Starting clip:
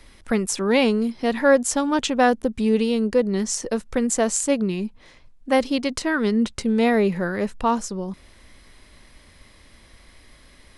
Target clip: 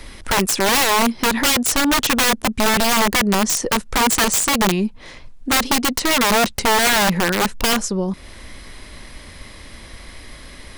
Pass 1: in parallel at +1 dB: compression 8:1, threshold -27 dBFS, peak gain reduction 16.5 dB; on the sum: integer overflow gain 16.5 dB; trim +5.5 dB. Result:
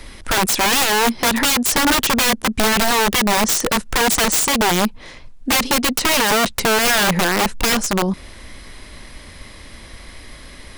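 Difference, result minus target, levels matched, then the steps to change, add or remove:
compression: peak gain reduction -9 dB
change: compression 8:1, threshold -37.5 dBFS, peak gain reduction 25.5 dB

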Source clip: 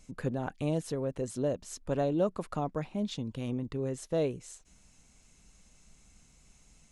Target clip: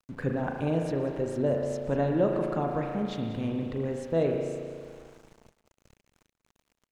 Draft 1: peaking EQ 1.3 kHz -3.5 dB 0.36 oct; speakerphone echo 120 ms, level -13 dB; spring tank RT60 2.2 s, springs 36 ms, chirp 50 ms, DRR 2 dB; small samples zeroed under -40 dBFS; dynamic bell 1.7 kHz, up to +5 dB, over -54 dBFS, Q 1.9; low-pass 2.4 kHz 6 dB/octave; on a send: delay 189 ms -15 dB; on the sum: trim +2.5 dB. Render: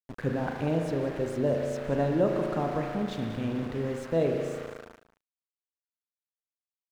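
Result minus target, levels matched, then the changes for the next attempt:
small samples zeroed: distortion +11 dB
change: small samples zeroed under -50 dBFS

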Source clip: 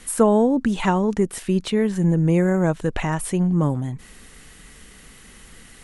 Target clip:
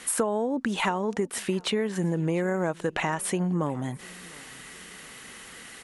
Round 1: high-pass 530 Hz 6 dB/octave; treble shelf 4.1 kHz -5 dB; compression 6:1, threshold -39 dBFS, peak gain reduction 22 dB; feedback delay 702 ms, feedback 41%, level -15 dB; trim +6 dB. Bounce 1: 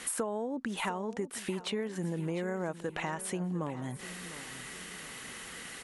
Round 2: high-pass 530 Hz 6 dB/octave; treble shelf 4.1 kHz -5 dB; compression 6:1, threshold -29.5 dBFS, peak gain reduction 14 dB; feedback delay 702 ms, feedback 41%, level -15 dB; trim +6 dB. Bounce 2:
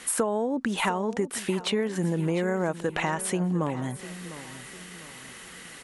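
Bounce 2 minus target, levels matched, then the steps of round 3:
echo-to-direct +10 dB
high-pass 530 Hz 6 dB/octave; treble shelf 4.1 kHz -5 dB; compression 6:1, threshold -29.5 dBFS, peak gain reduction 14 dB; feedback delay 702 ms, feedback 41%, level -25 dB; trim +6 dB

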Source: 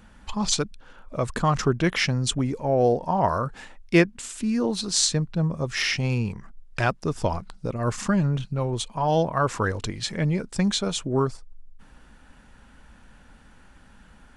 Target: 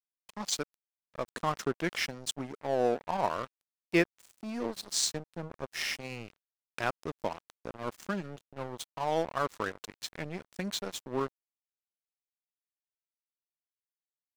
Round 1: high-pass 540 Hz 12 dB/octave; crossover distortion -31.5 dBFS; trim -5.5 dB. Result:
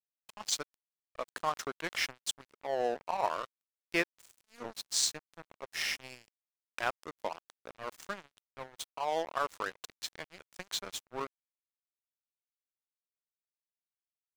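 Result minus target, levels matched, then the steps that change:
250 Hz band -8.5 dB
change: high-pass 230 Hz 12 dB/octave

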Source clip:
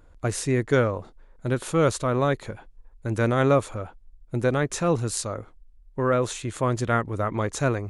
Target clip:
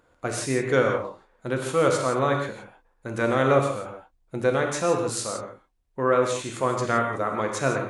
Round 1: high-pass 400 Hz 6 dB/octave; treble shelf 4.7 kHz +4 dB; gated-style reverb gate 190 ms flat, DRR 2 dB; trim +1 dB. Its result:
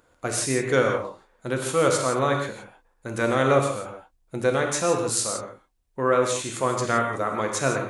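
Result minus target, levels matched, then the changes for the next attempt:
8 kHz band +5.0 dB
change: treble shelf 4.7 kHz -4 dB

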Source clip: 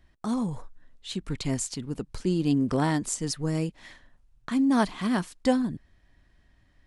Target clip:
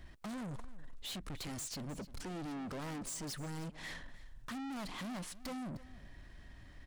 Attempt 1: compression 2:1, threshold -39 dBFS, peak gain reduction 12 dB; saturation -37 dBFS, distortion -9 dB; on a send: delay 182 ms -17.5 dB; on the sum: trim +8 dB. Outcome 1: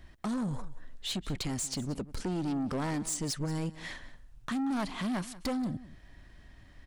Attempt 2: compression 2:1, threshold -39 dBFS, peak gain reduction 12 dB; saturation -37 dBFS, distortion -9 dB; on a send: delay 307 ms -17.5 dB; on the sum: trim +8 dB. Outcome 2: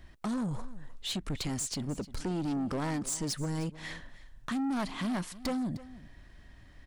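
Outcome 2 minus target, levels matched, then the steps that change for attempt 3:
saturation: distortion -6 dB
change: saturation -49 dBFS, distortion -3 dB

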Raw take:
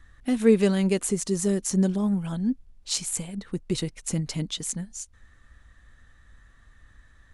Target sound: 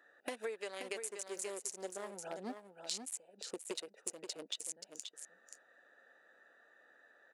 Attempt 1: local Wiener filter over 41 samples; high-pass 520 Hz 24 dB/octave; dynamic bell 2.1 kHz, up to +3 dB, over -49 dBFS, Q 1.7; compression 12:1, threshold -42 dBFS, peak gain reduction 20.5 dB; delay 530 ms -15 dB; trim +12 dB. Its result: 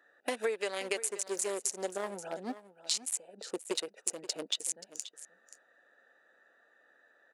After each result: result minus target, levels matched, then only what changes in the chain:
compression: peak gain reduction -8.5 dB; echo-to-direct -7.5 dB
change: compression 12:1, threshold -51.5 dBFS, peak gain reduction 29 dB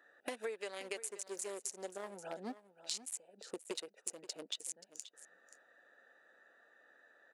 echo-to-direct -7.5 dB
change: delay 530 ms -7.5 dB

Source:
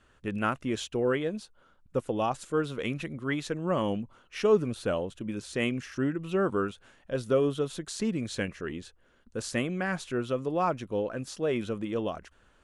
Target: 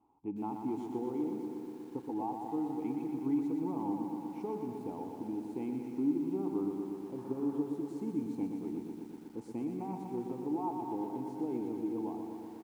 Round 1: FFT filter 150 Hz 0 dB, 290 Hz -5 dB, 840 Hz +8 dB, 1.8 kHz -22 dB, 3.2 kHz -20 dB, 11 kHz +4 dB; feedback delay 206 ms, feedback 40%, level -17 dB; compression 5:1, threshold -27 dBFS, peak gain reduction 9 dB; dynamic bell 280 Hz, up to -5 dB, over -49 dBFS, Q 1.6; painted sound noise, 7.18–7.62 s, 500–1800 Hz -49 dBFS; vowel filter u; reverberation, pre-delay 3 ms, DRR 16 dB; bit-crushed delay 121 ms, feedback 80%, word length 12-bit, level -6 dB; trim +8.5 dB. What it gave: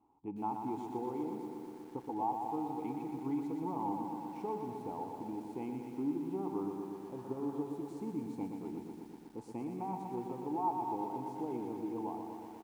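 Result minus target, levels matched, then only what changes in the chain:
1 kHz band +6.5 dB
change: dynamic bell 920 Hz, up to -5 dB, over -49 dBFS, Q 1.6

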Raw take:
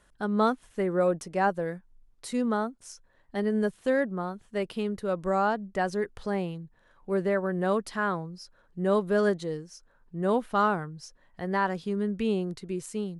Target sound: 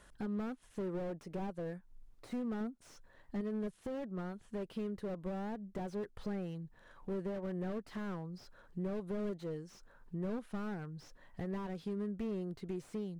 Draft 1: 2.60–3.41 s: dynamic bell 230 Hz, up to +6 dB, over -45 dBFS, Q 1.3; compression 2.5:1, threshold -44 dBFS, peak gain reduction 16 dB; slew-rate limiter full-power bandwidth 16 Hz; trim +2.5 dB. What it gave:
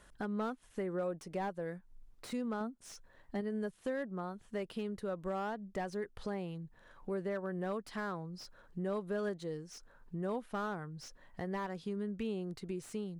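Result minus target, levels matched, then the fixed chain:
slew-rate limiter: distortion -12 dB
2.60–3.41 s: dynamic bell 230 Hz, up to +6 dB, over -45 dBFS, Q 1.3; compression 2.5:1, threshold -44 dBFS, peak gain reduction 16 dB; slew-rate limiter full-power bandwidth 4.5 Hz; trim +2.5 dB

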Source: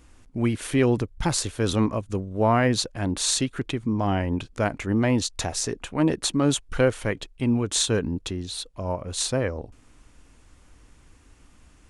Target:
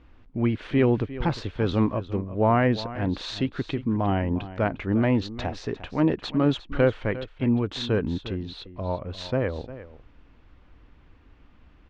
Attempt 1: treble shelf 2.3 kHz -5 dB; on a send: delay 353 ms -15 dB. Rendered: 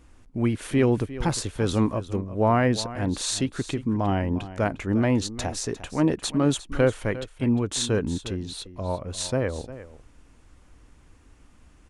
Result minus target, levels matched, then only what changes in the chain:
4 kHz band +3.0 dB
add first: low-pass 3.9 kHz 24 dB/octave

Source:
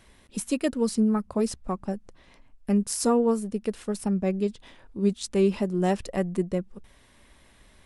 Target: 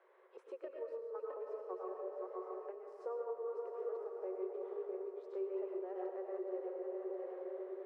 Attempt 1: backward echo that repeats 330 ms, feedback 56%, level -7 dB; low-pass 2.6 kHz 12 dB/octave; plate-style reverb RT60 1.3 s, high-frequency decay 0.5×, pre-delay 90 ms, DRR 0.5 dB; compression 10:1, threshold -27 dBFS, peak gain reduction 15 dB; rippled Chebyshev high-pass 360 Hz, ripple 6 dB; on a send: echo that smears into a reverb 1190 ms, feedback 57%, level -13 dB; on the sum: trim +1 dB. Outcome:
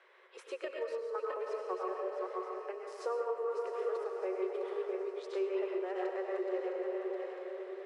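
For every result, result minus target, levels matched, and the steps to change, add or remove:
2 kHz band +10.5 dB; compression: peak gain reduction -5.5 dB
change: low-pass 900 Hz 12 dB/octave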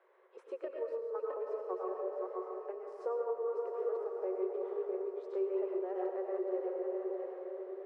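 compression: peak gain reduction -6 dB
change: compression 10:1, threshold -33.5 dBFS, peak gain reduction 20.5 dB

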